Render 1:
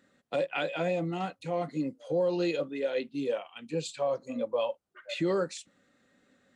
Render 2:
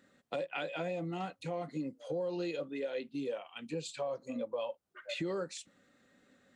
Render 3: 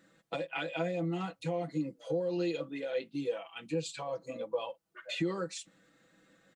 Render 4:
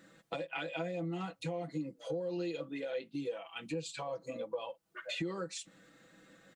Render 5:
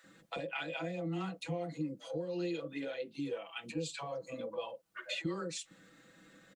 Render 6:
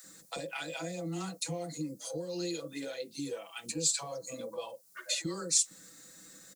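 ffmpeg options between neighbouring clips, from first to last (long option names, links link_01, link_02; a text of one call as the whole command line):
ffmpeg -i in.wav -af "acompressor=threshold=-37dB:ratio=2.5" out.wav
ffmpeg -i in.wav -af "aecho=1:1:6.1:0.87" out.wav
ffmpeg -i in.wav -af "acompressor=threshold=-46dB:ratio=2,volume=4.5dB" out.wav
ffmpeg -i in.wav -filter_complex "[0:a]acrossover=split=640[link_01][link_02];[link_01]adelay=40[link_03];[link_03][link_02]amix=inputs=2:normalize=0,volume=1dB" out.wav
ffmpeg -i in.wav -af "aexciter=amount=4.8:drive=8.9:freq=4400" out.wav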